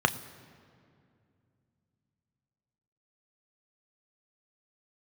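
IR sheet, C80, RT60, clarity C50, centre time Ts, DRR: 16.5 dB, 2.4 s, 16.0 dB, 8 ms, 9.0 dB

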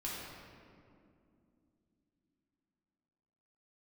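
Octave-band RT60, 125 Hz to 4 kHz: 3.8 s, 4.5 s, 2.9 s, 2.1 s, 1.8 s, 1.3 s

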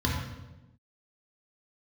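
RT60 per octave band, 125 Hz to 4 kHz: 1.2 s, 1.3 s, 1.1 s, 0.90 s, 0.85 s, 0.80 s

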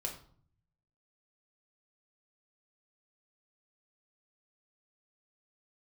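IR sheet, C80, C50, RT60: 13.0 dB, 8.5 dB, 0.50 s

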